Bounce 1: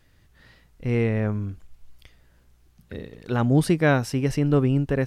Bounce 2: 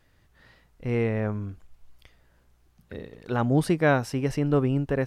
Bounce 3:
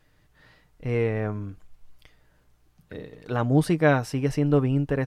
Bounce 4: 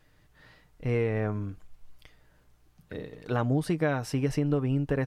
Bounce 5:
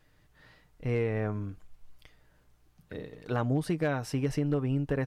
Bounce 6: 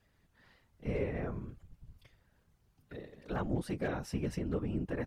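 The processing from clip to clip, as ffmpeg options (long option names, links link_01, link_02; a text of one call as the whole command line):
ffmpeg -i in.wav -af "equalizer=frequency=830:width_type=o:width=2.3:gain=5,volume=-4.5dB" out.wav
ffmpeg -i in.wav -af "aecho=1:1:6.6:0.34" out.wav
ffmpeg -i in.wav -af "acompressor=threshold=-22dB:ratio=10" out.wav
ffmpeg -i in.wav -af "asoftclip=type=hard:threshold=-17dB,volume=-2dB" out.wav
ffmpeg -i in.wav -af "afftfilt=real='hypot(re,im)*cos(2*PI*random(0))':imag='hypot(re,im)*sin(2*PI*random(1))':win_size=512:overlap=0.75" out.wav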